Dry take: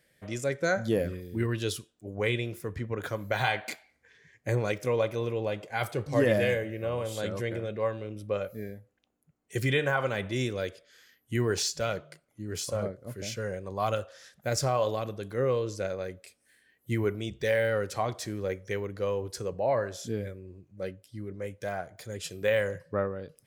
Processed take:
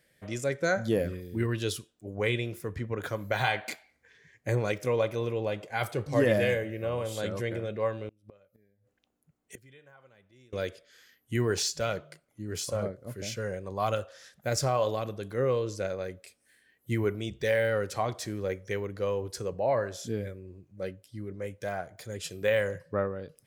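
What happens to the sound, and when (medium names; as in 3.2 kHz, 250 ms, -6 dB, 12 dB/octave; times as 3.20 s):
8.08–10.53 s: inverted gate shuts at -31 dBFS, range -29 dB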